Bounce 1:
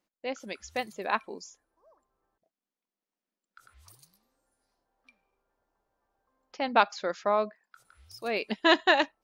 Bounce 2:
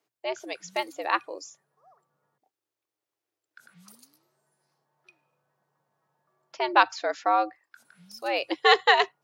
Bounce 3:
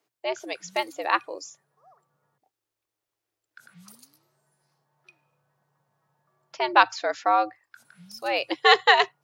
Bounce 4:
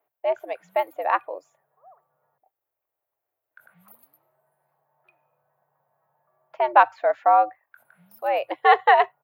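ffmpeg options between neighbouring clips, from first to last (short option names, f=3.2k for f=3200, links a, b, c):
-af "afreqshift=110,volume=3dB"
-af "asubboost=boost=3.5:cutoff=140,volume=2.5dB"
-af "firequalizer=gain_entry='entry(130,0);entry(250,-4);entry(630,14);entry(1200,6);entry(2100,3);entry(5500,-22);entry(13000,11)':delay=0.05:min_phase=1,volume=-6.5dB"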